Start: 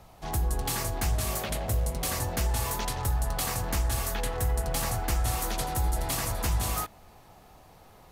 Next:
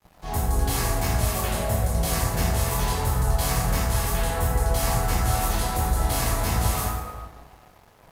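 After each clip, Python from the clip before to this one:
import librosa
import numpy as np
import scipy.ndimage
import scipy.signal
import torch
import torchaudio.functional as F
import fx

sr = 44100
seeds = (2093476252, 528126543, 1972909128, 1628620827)

y = fx.rev_plate(x, sr, seeds[0], rt60_s=1.6, hf_ratio=0.5, predelay_ms=0, drr_db=-8.5)
y = np.sign(y) * np.maximum(np.abs(y) - 10.0 ** (-45.5 / 20.0), 0.0)
y = F.gain(torch.from_numpy(y), -3.0).numpy()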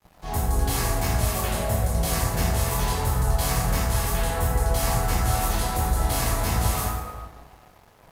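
y = x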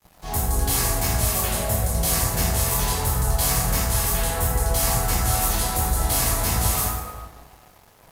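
y = fx.high_shelf(x, sr, hz=4400.0, db=8.5)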